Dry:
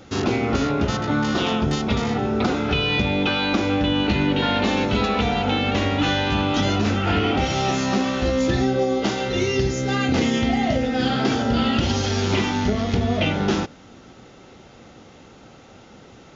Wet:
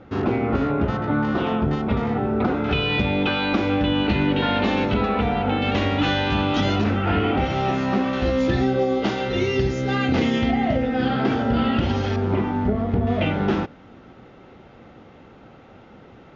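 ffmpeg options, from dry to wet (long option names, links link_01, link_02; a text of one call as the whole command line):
ffmpeg -i in.wav -af "asetnsamples=nb_out_samples=441:pad=0,asendcmd='2.64 lowpass f 3400;4.94 lowpass f 2100;5.62 lowpass f 4200;6.84 lowpass f 2400;8.13 lowpass f 3600;10.51 lowpass f 2400;12.16 lowpass f 1200;13.07 lowpass f 2400',lowpass=1800" out.wav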